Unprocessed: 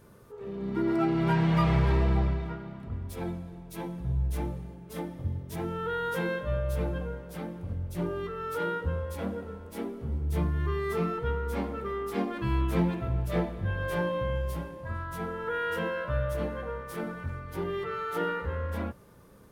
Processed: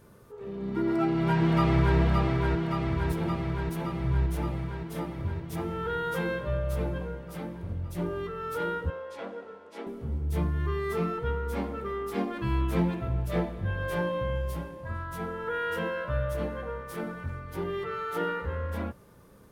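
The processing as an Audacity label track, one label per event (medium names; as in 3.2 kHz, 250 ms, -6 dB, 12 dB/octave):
0.840000	1.980000	echo throw 570 ms, feedback 75%, level -3.5 dB
8.900000	9.870000	band-pass 420–5300 Hz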